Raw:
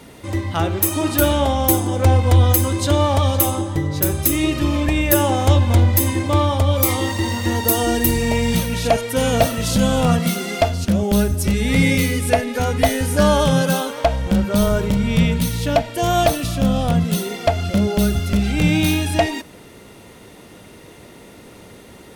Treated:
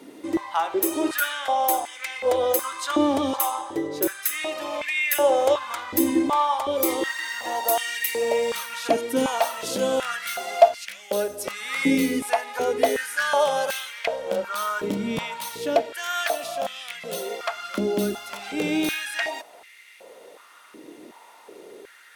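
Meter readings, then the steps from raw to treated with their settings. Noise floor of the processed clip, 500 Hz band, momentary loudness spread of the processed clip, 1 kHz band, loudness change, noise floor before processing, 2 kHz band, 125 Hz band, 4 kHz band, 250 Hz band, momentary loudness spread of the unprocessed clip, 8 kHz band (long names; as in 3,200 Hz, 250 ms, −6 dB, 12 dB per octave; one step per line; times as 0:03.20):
−50 dBFS, −3.5 dB, 8 LU, −2.5 dB, −6.5 dB, −43 dBFS, −2.0 dB, −26.5 dB, −6.0 dB, −9.0 dB, 5 LU, −7.0 dB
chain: high-pass on a step sequencer 2.7 Hz 300–2,100 Hz
level −7 dB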